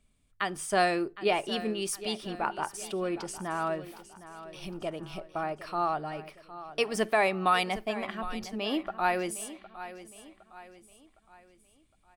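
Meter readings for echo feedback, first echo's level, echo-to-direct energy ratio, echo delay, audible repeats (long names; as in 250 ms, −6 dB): 43%, −14.5 dB, −13.5 dB, 761 ms, 3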